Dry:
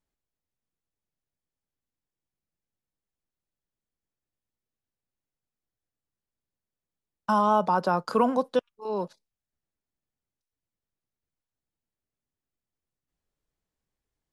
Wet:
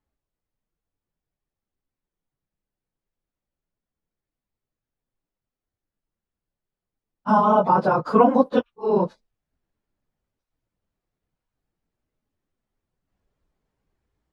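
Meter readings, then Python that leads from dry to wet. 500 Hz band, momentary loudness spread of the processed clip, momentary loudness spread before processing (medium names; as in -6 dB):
+6.5 dB, 7 LU, 11 LU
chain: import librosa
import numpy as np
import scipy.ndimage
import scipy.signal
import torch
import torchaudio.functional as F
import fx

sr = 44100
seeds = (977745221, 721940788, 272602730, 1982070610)

p1 = fx.phase_scramble(x, sr, seeds[0], window_ms=50)
p2 = fx.rider(p1, sr, range_db=10, speed_s=2.0)
p3 = p1 + (p2 * 10.0 ** (2.0 / 20.0))
y = fx.lowpass(p3, sr, hz=1500.0, slope=6)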